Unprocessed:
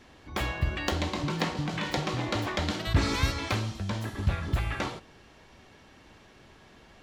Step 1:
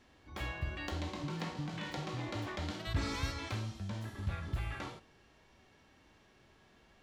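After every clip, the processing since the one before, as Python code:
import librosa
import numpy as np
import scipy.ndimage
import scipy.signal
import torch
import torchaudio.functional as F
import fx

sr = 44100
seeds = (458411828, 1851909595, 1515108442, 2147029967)

y = fx.hpss(x, sr, part='percussive', gain_db=-8)
y = F.gain(torch.from_numpy(y), -7.0).numpy()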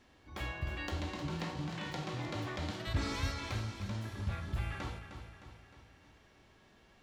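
y = fx.echo_feedback(x, sr, ms=308, feedback_pct=52, wet_db=-9.5)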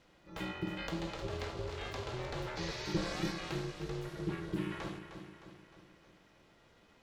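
y = x * np.sin(2.0 * np.pi * 250.0 * np.arange(len(x)) / sr)
y = fx.spec_repair(y, sr, seeds[0], start_s=2.59, length_s=0.4, low_hz=1700.0, high_hz=7200.0, source='after')
y = F.gain(torch.from_numpy(y), 2.0).numpy()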